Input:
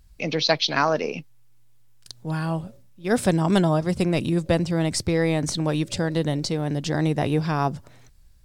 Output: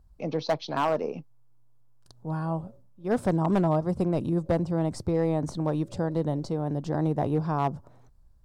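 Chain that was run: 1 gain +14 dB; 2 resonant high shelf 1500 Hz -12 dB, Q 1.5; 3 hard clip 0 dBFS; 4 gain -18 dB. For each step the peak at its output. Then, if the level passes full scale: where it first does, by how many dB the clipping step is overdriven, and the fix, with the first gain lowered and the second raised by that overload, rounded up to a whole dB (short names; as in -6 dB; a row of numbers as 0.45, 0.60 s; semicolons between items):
+9.0, +7.5, 0.0, -18.0 dBFS; step 1, 7.5 dB; step 1 +6 dB, step 4 -10 dB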